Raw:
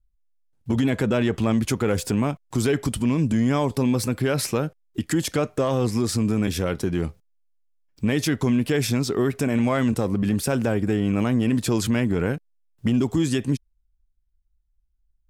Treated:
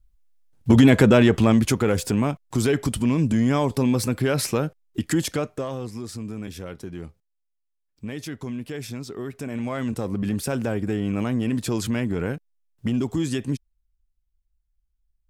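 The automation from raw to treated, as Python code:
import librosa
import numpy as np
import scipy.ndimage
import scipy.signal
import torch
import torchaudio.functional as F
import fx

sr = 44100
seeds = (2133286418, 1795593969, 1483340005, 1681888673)

y = fx.gain(x, sr, db=fx.line((0.99, 8.0), (1.98, 0.5), (5.2, 0.5), (5.89, -11.0), (9.2, -11.0), (10.2, -3.0)))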